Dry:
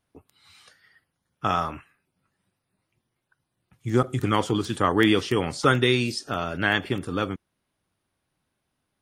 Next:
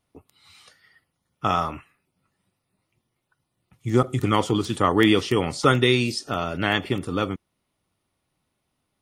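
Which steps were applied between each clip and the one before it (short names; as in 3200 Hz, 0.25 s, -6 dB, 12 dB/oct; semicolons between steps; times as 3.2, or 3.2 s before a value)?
notch 1600 Hz, Q 6.9; gain +2 dB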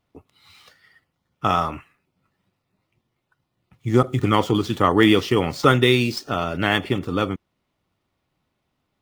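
median filter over 5 samples; gain +2.5 dB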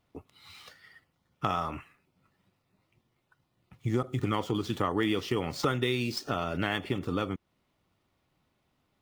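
compressor 3:1, threshold -29 dBFS, peak gain reduction 14 dB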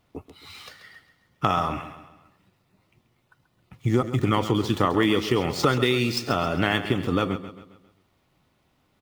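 feedback echo 0.134 s, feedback 45%, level -12 dB; gain +7 dB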